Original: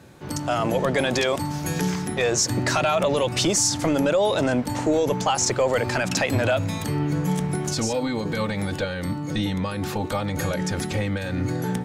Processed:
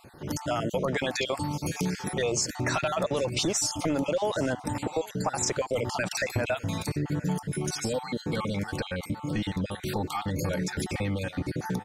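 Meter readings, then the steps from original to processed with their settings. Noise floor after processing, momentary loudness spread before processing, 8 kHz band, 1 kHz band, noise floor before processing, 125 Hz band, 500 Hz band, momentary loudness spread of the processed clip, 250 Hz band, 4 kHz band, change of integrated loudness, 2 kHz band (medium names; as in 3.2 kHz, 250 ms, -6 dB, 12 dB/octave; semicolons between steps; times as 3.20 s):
-46 dBFS, 6 LU, -6.0 dB, -6.5 dB, -31 dBFS, -5.5 dB, -6.5 dB, 5 LU, -6.0 dB, -6.0 dB, -6.0 dB, -6.0 dB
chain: random holes in the spectrogram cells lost 39%; compression 2:1, threshold -28 dBFS, peak gain reduction 6.5 dB; on a send: delay 795 ms -21.5 dB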